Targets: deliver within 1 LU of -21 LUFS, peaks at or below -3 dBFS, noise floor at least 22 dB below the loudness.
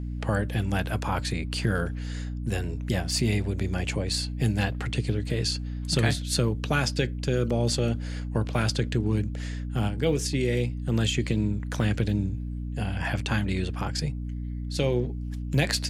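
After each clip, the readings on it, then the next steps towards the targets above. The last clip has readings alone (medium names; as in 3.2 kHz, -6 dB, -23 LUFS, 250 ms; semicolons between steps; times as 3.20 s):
hum 60 Hz; highest harmonic 300 Hz; hum level -30 dBFS; loudness -28.0 LUFS; peak level -9.0 dBFS; loudness target -21.0 LUFS
-> hum notches 60/120/180/240/300 Hz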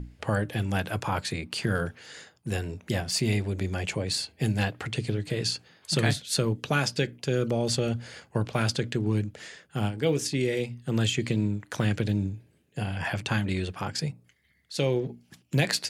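hum not found; loudness -29.0 LUFS; peak level -9.0 dBFS; loudness target -21.0 LUFS
-> trim +8 dB; peak limiter -3 dBFS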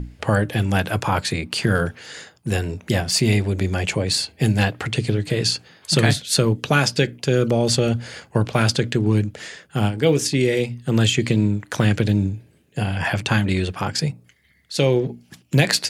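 loudness -21.0 LUFS; peak level -3.0 dBFS; noise floor -57 dBFS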